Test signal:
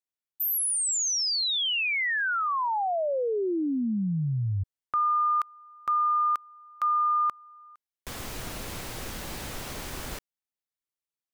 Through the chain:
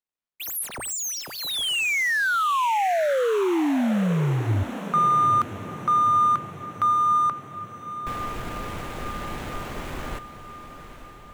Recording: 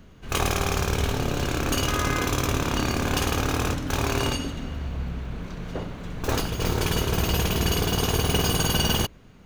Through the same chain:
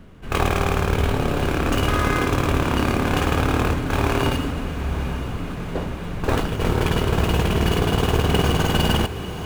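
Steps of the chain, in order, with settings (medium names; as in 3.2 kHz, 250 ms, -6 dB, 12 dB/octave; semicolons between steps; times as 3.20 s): median filter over 9 samples; hum notches 60/120 Hz; on a send: echo that smears into a reverb 900 ms, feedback 61%, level -12 dB; on the sum: trim +5 dB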